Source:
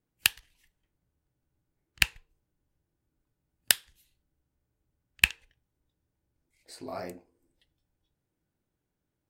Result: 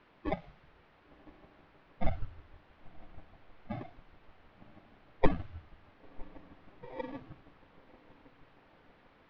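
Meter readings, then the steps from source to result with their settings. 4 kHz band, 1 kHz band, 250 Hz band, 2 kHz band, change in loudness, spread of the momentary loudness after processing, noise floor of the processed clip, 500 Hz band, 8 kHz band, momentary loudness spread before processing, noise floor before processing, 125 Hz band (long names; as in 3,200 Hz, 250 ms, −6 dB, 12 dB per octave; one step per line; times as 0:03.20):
−26.0 dB, +3.5 dB, +9.0 dB, −18.0 dB, −11.5 dB, 25 LU, −64 dBFS, +6.5 dB, below −40 dB, 15 LU, −84 dBFS, +6.0 dB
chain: sub-harmonics by changed cycles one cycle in 2, inverted
rectangular room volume 890 cubic metres, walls furnished, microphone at 8 metres
spectral peaks only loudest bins 8
feedback delay with all-pass diffusion 1,037 ms, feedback 49%, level −14 dB
square-wave tremolo 6.3 Hz, depth 60%, duty 15%
decimation without filtering 31×
noise reduction from a noise print of the clip's start 6 dB
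background noise white −52 dBFS
Gaussian smoothing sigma 3 samples
one half of a high-frequency compander decoder only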